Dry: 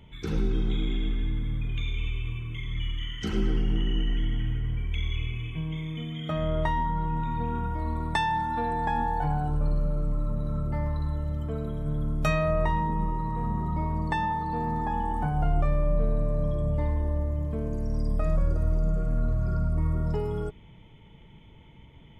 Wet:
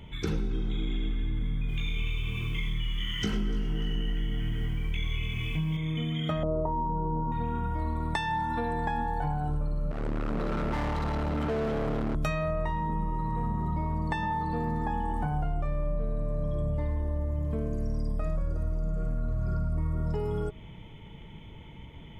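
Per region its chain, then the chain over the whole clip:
0:01.39–0:05.77: double-tracking delay 20 ms −3 dB + feedback echo at a low word length 294 ms, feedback 35%, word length 9 bits, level −8.5 dB
0:06.43–0:07.32: Butterworth low-pass 1,200 Hz 48 dB per octave + parametric band 430 Hz +11.5 dB 1.2 octaves
0:09.91–0:12.15: comb filter 4.3 ms, depth 55% + hard clipping −27 dBFS + mid-hump overdrive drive 32 dB, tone 1,200 Hz, clips at −24.5 dBFS
whole clip: hum removal 126.9 Hz, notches 10; downward compressor, threshold −32 dBFS; level +5.5 dB

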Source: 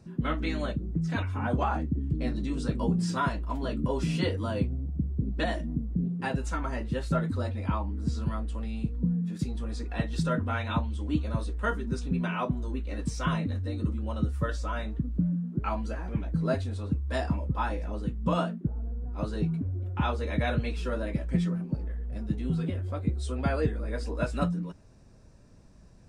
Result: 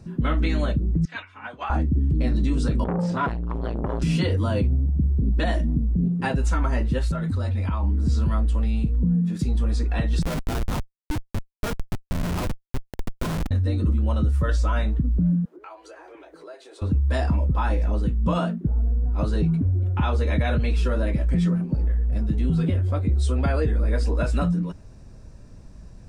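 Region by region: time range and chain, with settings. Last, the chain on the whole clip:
0:01.05–0:01.70: resonant band-pass 2,400 Hz, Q 1 + expander for the loud parts, over −47 dBFS
0:02.84–0:04.02: low-pass filter 2,200 Hz 6 dB per octave + saturating transformer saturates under 730 Hz
0:06.98–0:07.83: parametric band 410 Hz −4 dB 2.1 octaves + downward compressor 10 to 1, threshold −30 dBFS
0:10.22–0:13.51: high-pass filter 210 Hz + high-shelf EQ 5,400 Hz −10 dB + comparator with hysteresis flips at −30 dBFS
0:15.45–0:16.82: elliptic high-pass filter 340 Hz + downward compressor 3 to 1, threshold −50 dBFS
whole clip: low-shelf EQ 99 Hz +8.5 dB; brickwall limiter −20 dBFS; level +6 dB

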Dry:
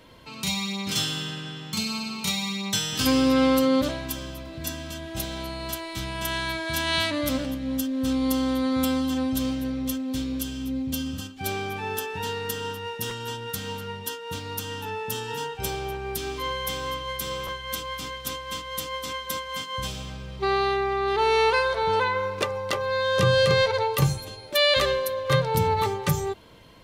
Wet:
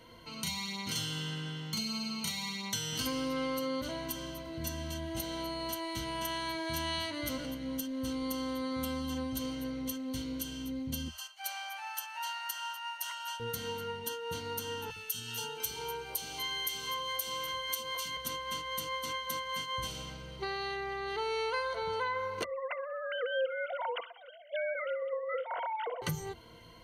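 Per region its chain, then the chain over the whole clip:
0:11.08–0:13.40: linear-phase brick-wall high-pass 570 Hz + notch filter 3,600 Hz, Q 8.6
0:14.90–0:18.17: spectral tilt +2 dB per octave + notch filter 1,900 Hz, Q 11 + three-band delay without the direct sound highs, lows, mids 60/480 ms, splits 330/1,300 Hz
0:22.44–0:26.02: three sine waves on the formant tracks + repeating echo 63 ms, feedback 60%, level −23 dB
whole clip: EQ curve with evenly spaced ripples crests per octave 1.9, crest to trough 11 dB; downward compressor 3 to 1, threshold −28 dBFS; level −5.5 dB

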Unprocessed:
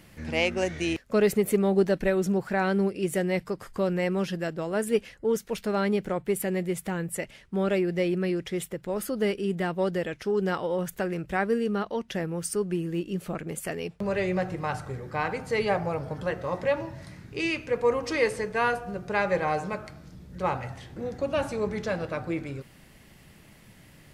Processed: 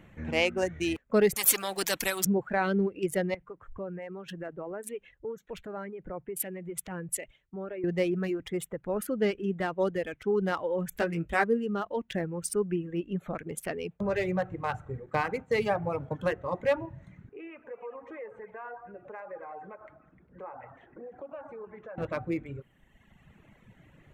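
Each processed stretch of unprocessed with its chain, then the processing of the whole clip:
0:01.36–0:02.25: RIAA equalisation recording + every bin compressed towards the loudest bin 2 to 1
0:03.34–0:07.84: downward compressor 8 to 1, threshold −31 dBFS + parametric band 220 Hz −6 dB 0.3 octaves + multiband upward and downward expander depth 100%
0:10.90–0:11.44: high-shelf EQ 3,200 Hz +9 dB + double-tracking delay 18 ms −5 dB
0:15.06–0:16.36: high-pass filter 42 Hz + downward expander −34 dBFS + multiband upward and downward compressor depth 70%
0:17.29–0:21.98: three-way crossover with the lows and the highs turned down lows −16 dB, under 280 Hz, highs −21 dB, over 2,100 Hz + downward compressor 3 to 1, threshold −42 dBFS + echo through a band-pass that steps 101 ms, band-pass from 770 Hz, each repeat 0.7 octaves, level −3.5 dB
whole clip: adaptive Wiener filter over 9 samples; reverb reduction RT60 1.5 s

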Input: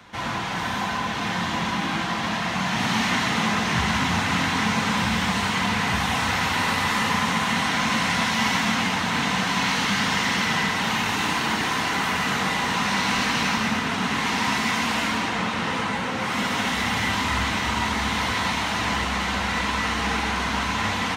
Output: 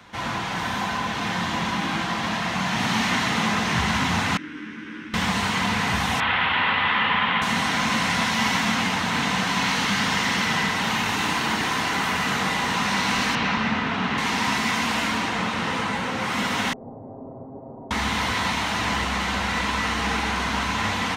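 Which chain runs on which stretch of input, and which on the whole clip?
0:04.37–0:05.14: lower of the sound and its delayed copy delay 0.34 ms + pair of resonant band-passes 690 Hz, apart 2.3 octaves + double-tracking delay 13 ms −5 dB
0:06.20–0:07.42: elliptic low-pass filter 3,300 Hz, stop band 80 dB + tilt shelving filter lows −5 dB, about 720 Hz
0:13.35–0:14.18: low-pass filter 3,600 Hz + double-tracking delay 49 ms −11 dB
0:16.73–0:17.91: lower of the sound and its delayed copy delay 7.5 ms + Butterworth low-pass 650 Hz + spectral tilt +3.5 dB per octave
whole clip: no processing

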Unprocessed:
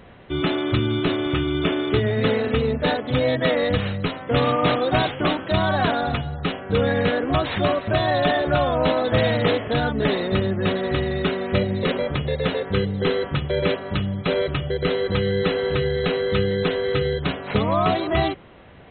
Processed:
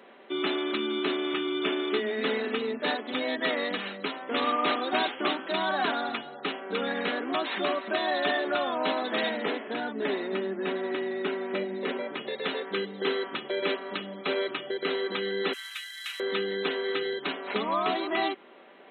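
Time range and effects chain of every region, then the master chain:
0:09.29–0:12.17: high-frequency loss of the air 290 metres + notch filter 1,200 Hz, Q 15
0:15.53–0:16.20: variable-slope delta modulation 64 kbit/s + Bessel high-pass filter 2,200 Hz, order 6
whole clip: Butterworth high-pass 250 Hz 36 dB per octave; dynamic equaliser 540 Hz, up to −7 dB, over −36 dBFS, Q 1.9; comb filter 5.1 ms, depth 32%; level −4 dB

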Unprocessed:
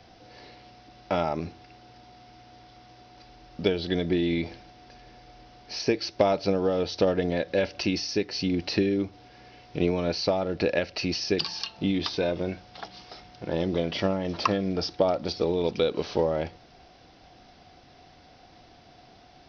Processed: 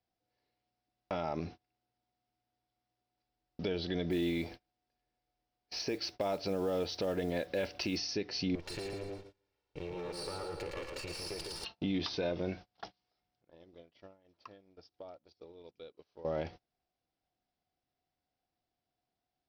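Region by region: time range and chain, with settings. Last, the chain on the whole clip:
0:04.10–0:07.97: parametric band 140 Hz −2.5 dB 1.1 octaves + noise that follows the level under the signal 28 dB
0:08.55–0:11.65: lower of the sound and its delayed copy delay 2.2 ms + downward compressor 3 to 1, threshold −36 dBFS + echo with a time of its own for lows and highs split 610 Hz, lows 152 ms, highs 112 ms, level −4 dB
0:12.87–0:16.25: dynamic equaliser 190 Hz, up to −6 dB, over −43 dBFS, Q 2.9 + downward compressor 3 to 1, threshold −44 dBFS
whole clip: noise gate −40 dBFS, range −30 dB; brickwall limiter −18.5 dBFS; level −5.5 dB

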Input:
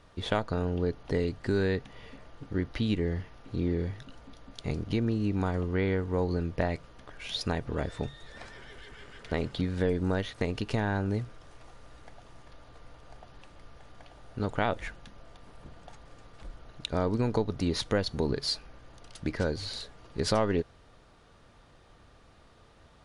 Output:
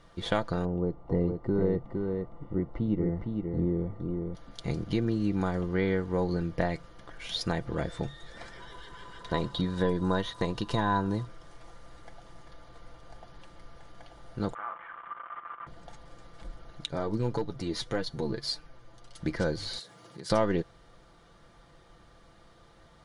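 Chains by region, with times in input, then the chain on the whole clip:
0:00.65–0:04.35: Savitzky-Golay smoothing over 65 samples + single-tap delay 461 ms −4.5 dB
0:08.60–0:11.26: parametric band 2,200 Hz −8 dB 0.23 octaves + hollow resonant body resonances 1,000/3,800 Hz, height 18 dB, ringing for 75 ms
0:14.54–0:15.67: linear delta modulator 16 kbit/s, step −23.5 dBFS + resonant band-pass 1,200 Hz, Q 7 + flutter between parallel walls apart 7.1 metres, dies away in 0.22 s
0:16.85–0:19.20: flanger 1.7 Hz, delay 6.4 ms, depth 3 ms, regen +31% + hard clipping −21 dBFS
0:19.79–0:20.30: high-pass filter 110 Hz 24 dB per octave + high-shelf EQ 6,400 Hz +9.5 dB + downward compressor 2.5 to 1, threshold −46 dBFS
whole clip: notch filter 2,600 Hz, Q 9.1; comb filter 5.9 ms, depth 45%

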